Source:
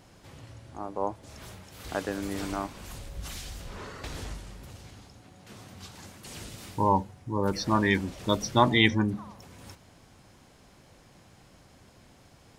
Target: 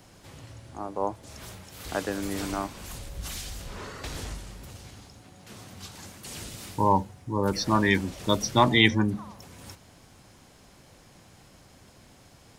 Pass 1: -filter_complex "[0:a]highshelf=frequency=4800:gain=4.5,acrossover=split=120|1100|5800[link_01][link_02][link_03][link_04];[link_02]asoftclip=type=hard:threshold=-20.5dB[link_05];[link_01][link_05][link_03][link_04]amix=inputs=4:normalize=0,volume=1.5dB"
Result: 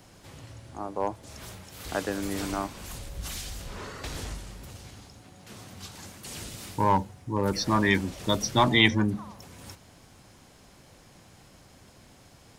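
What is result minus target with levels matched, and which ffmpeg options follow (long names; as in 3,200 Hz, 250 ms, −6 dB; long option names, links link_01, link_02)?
hard clipping: distortion +10 dB
-filter_complex "[0:a]highshelf=frequency=4800:gain=4.5,acrossover=split=120|1100|5800[link_01][link_02][link_03][link_04];[link_02]asoftclip=type=hard:threshold=-14dB[link_05];[link_01][link_05][link_03][link_04]amix=inputs=4:normalize=0,volume=1.5dB"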